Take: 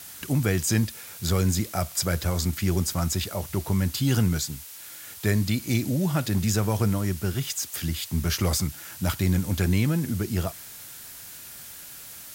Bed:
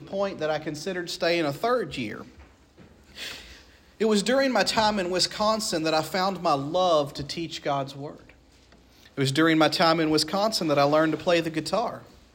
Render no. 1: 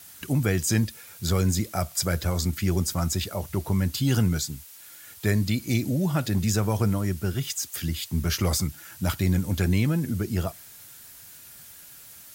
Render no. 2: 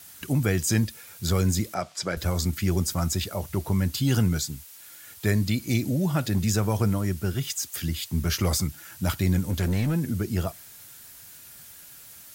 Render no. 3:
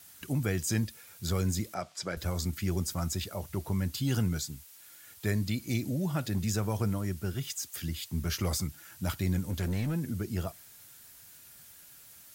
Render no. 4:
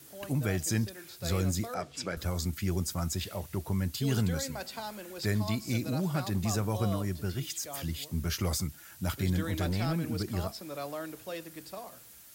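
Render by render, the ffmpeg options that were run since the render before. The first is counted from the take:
-af "afftdn=nr=6:nf=-43"
-filter_complex "[0:a]asettb=1/sr,asplit=3[s0][s1][s2];[s0]atrim=end=1.744[s3];[s1]atrim=start=1.74:end=2.17,asetpts=PTS-STARTPTS,afade=t=in:d=0.004:c=qsin,afade=t=out:st=0.426:d=0.004:c=qsin,highpass=210,lowpass=5200[s4];[s2]atrim=start=2.166[s5];[s3][s4]acrossfade=d=0.004:c1=hsin:c2=qsin[s6];[s6][s5]acrossfade=d=0.004:c1=qsin:c2=hsin,asplit=3[s7][s8][s9];[s7]afade=t=out:st=9.47:d=0.02[s10];[s8]asoftclip=type=hard:threshold=0.0944,afade=t=in:st=9.47:d=0.02,afade=t=out:st=9.94:d=0.02[s11];[s9]afade=t=in:st=9.94:d=0.02[s12];[s10][s11][s12]amix=inputs=3:normalize=0"
-af "volume=0.473"
-filter_complex "[1:a]volume=0.133[s0];[0:a][s0]amix=inputs=2:normalize=0"

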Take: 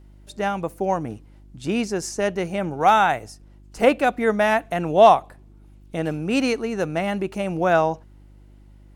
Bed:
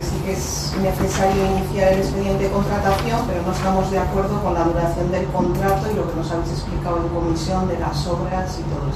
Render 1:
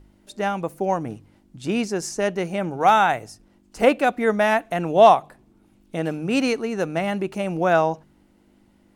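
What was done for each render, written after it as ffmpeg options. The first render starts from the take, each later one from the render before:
-af "bandreject=f=50:t=h:w=4,bandreject=f=100:t=h:w=4,bandreject=f=150:t=h:w=4"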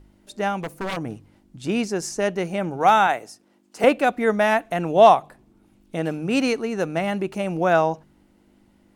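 -filter_complex "[0:a]asettb=1/sr,asplit=3[s0][s1][s2];[s0]atrim=end=0.574[s3];[s1]atrim=start=0.57:end=0.97,asetpts=PTS-STARTPTS,afade=t=in:d=0.004:c=qsin,afade=t=out:st=0.396:d=0.004:c=qsin,aeval=exprs='0.075*(abs(mod(val(0)/0.075+3,4)-2)-1)':c=same[s4];[s2]atrim=start=0.966[s5];[s3][s4]acrossfade=d=0.004:c1=hsin:c2=qsin[s6];[s6][s5]acrossfade=d=0.004:c1=qsin:c2=hsin,asettb=1/sr,asplit=3[s7][s8][s9];[s7]atrim=end=3.074[s10];[s8]atrim=start=3.07:end=3.84,asetpts=PTS-STARTPTS,afade=t=in:d=0.004:c=qsin,afade=t=out:st=0.766:d=0.004:c=qsin,highpass=250[s11];[s9]atrim=start=3.836[s12];[s10][s11]acrossfade=d=0.004:c1=hsin:c2=qsin[s13];[s13][s12]acrossfade=d=0.004:c1=qsin:c2=hsin"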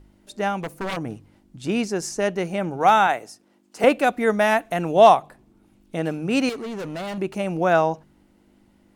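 -filter_complex "[0:a]asettb=1/sr,asplit=3[s0][s1][s2];[s0]atrim=end=3.904[s3];[s1]atrim=start=3.9:end=5.17,asetpts=PTS-STARTPTS,afade=t=in:d=0.004:c=qsin,afade=t=out:st=1.266:d=0.004:c=qsin,highshelf=f=5900:g=5[s4];[s2]atrim=start=5.166[s5];[s3][s4]acrossfade=d=0.004:c1=hsin:c2=qsin[s6];[s6][s5]acrossfade=d=0.004:c1=qsin:c2=hsin,asettb=1/sr,asplit=3[s7][s8][s9];[s7]atrim=end=6.494[s10];[s8]atrim=start=6.49:end=7.18,asetpts=PTS-STARTPTS,afade=t=in:d=0.004:c=qsin,afade=t=out:st=0.686:d=0.004:c=qsin,asoftclip=type=hard:threshold=0.0376[s11];[s9]atrim=start=7.176[s12];[s10][s11]acrossfade=d=0.004:c1=hsin:c2=qsin[s13];[s13][s12]acrossfade=d=0.004:c1=qsin:c2=hsin"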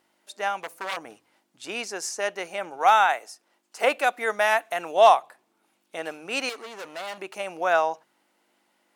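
-af "highpass=710"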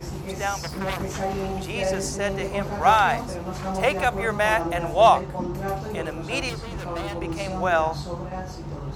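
-filter_complex "[1:a]volume=0.316[s0];[0:a][s0]amix=inputs=2:normalize=0"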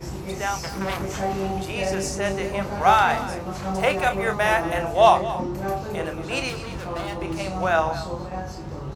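-filter_complex "[0:a]asplit=2[s0][s1];[s1]adelay=31,volume=0.376[s2];[s0][s2]amix=inputs=2:normalize=0,aecho=1:1:230:0.188"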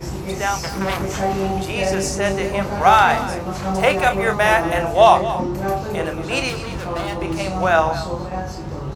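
-af "volume=1.78,alimiter=limit=0.891:level=0:latency=1"

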